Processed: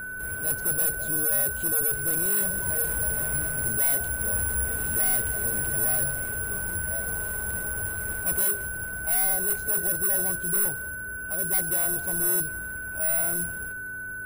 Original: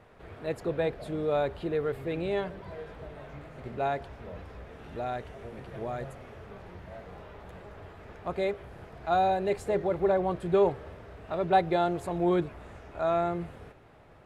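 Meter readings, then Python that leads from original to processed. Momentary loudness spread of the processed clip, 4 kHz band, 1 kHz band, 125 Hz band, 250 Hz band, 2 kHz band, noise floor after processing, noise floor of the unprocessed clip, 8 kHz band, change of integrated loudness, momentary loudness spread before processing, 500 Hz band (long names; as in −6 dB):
8 LU, −1.0 dB, −10.0 dB, +2.0 dB, −5.0 dB, +15.0 dB, −35 dBFS, −54 dBFS, can't be measured, +6.0 dB, 21 LU, −9.0 dB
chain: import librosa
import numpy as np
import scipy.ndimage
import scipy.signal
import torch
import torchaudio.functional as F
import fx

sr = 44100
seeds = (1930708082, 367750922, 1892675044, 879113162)

p1 = (np.kron(scipy.signal.resample_poly(x, 1, 4), np.eye(4)[0]) * 4)[:len(x)]
p2 = fx.high_shelf(p1, sr, hz=4500.0, db=4.5)
p3 = fx.rider(p2, sr, range_db=10, speed_s=0.5)
p4 = 10.0 ** (-14.0 / 20.0) * np.tanh(p3 / 10.0 ** (-14.0 / 20.0))
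p5 = fx.low_shelf(p4, sr, hz=100.0, db=12.0)
p6 = fx.dmg_buzz(p5, sr, base_hz=100.0, harmonics=4, level_db=-50.0, tilt_db=-3, odd_only=False)
p7 = p6 + fx.echo_single(p6, sr, ms=193, db=-20.5, dry=0)
p8 = p7 + 10.0 ** (-31.0 / 20.0) * np.sin(2.0 * np.pi * 1500.0 * np.arange(len(p7)) / sr)
y = p8 * librosa.db_to_amplitude(-2.0)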